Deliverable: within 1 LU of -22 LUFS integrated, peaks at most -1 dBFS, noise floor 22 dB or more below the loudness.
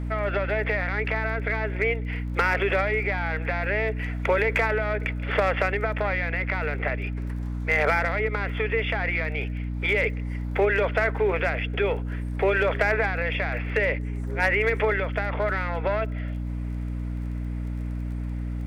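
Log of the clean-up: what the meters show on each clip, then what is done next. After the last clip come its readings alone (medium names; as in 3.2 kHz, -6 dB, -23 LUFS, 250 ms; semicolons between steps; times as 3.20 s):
tick rate 27 per s; hum 60 Hz; highest harmonic 300 Hz; hum level -27 dBFS; loudness -25.5 LUFS; peak level -11.5 dBFS; loudness target -22.0 LUFS
-> de-click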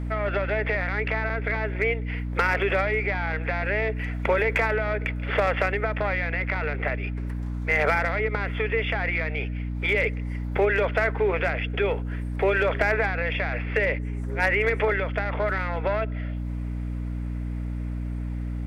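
tick rate 0.16 per s; hum 60 Hz; highest harmonic 300 Hz; hum level -27 dBFS
-> hum notches 60/120/180/240/300 Hz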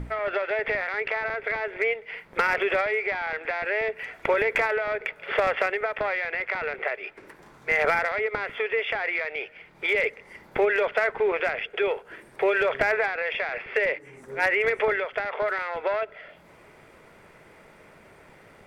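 hum not found; loudness -26.0 LUFS; peak level -9.5 dBFS; loudness target -22.0 LUFS
-> trim +4 dB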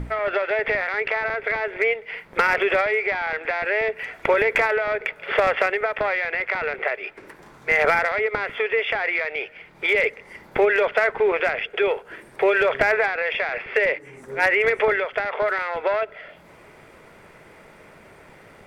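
loudness -22.0 LUFS; peak level -5.5 dBFS; noise floor -49 dBFS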